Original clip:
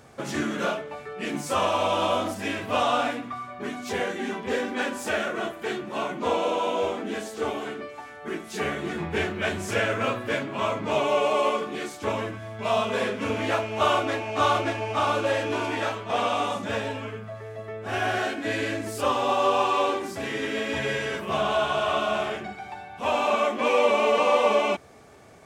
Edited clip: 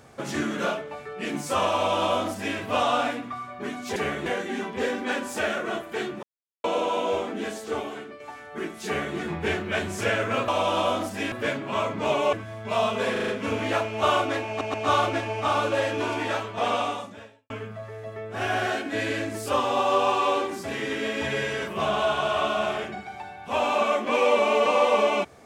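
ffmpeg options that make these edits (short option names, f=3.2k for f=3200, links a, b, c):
-filter_complex "[0:a]asplit=16[a][b][c][d][e][f][g][h][i][j][k][l][m][n][o][p];[a]atrim=end=3.962[q];[b]atrim=start=8.558:end=8.862[r];[c]atrim=start=3.958:end=5.93,asetpts=PTS-STARTPTS,afade=t=out:st=1.968:d=0.004:c=hsin[s];[d]atrim=start=5.93:end=6.34,asetpts=PTS-STARTPTS,volume=0[t];[e]atrim=start=6.34:end=7.9,asetpts=PTS-STARTPTS,afade=t=in:d=0.004:c=hsin,afade=t=out:st=0.98:d=0.58:silence=0.421697[u];[f]atrim=start=7.9:end=10.182,asetpts=PTS-STARTPTS,afade=t=in:d=0.004:c=hsin:silence=0.421697[v];[g]atrim=start=1.728:end=2.572[w];[h]atrim=start=10.178:end=11.192[x];[i]atrim=start=12.268:end=13.102[y];[j]atrim=start=13.058:end=13.102[z];[k]atrim=start=13.058:end=13.102[aa];[l]atrim=start=13.058:end=13.102[ab];[m]atrim=start=13.058:end=14.392[ac];[n]atrim=start=14.258:end=14.392[ad];[o]atrim=start=14.258:end=17.02,asetpts=PTS-STARTPTS,afade=t=out:st=2.052:d=0.71:c=qua[ae];[p]atrim=start=17.02,asetpts=PTS-STARTPTS,afade=t=in:d=0.004:c=hsin[af];[q][r]acrossfade=d=0.004:c1=hsin:c2=hsin[ag];[s][t][u][v]concat=n=4:v=0:a=1[ah];[ag][ah]acrossfade=d=0.004:c1=hsin:c2=hsin[ai];[ai][w]acrossfade=d=0.004:c1=hsin:c2=hsin[aj];[aj][x]acrossfade=d=0.004:c1=hsin:c2=hsin[ak];[ak][y]acrossfade=d=0.004:c1=hsin:c2=hsin[al];[al][z]acrossfade=d=0.004:c1=hsin:c2=hsin[am];[am][aa]acrossfade=d=0.004:c1=hsin:c2=hsin[an];[an][ab]acrossfade=d=0.004:c1=hsin:c2=hsin[ao];[ao][ac]acrossfade=d=0.004:c1=hsin:c2=hsin[ap];[ap][ad]acrossfade=d=0.004:c1=hsin:c2=hsin[aq];[ae][af]concat=n=2:v=0:a=1[ar];[aq][ar]acrossfade=d=0.004:c1=hsin:c2=hsin"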